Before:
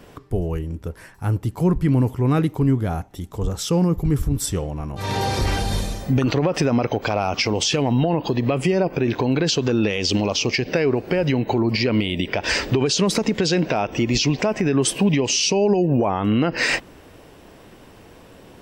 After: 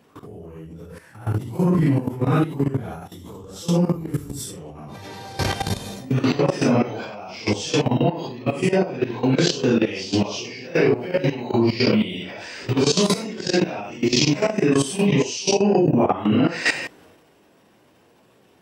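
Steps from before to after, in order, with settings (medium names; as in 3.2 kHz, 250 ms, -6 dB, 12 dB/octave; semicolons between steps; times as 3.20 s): phase randomisation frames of 200 ms; level held to a coarse grid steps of 20 dB; transient shaper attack -1 dB, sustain +7 dB; high-pass 120 Hz 12 dB/octave; trim +4 dB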